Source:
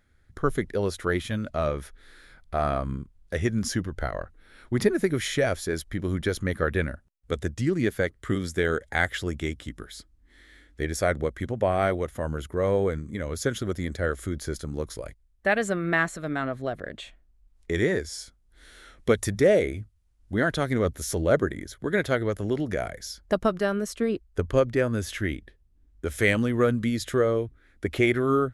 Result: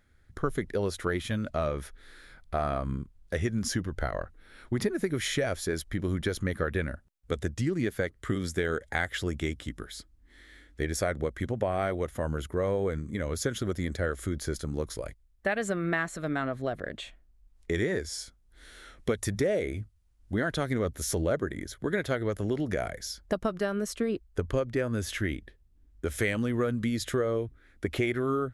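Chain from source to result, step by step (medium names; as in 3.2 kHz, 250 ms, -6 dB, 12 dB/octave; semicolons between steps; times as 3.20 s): compression 4:1, threshold -25 dBFS, peak gain reduction 9 dB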